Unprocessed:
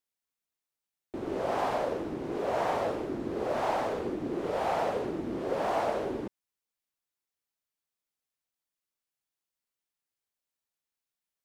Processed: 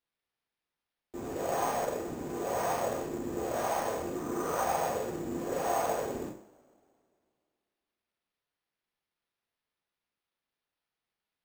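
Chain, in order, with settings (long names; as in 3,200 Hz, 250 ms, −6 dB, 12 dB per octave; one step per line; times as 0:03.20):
0:04.15–0:04.62: parametric band 1,200 Hz +11.5 dB 0.79 octaves
coupled-rooms reverb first 0.44 s, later 2.4 s, from −27 dB, DRR −4.5 dB
bad sample-rate conversion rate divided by 6×, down none, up hold
level −7 dB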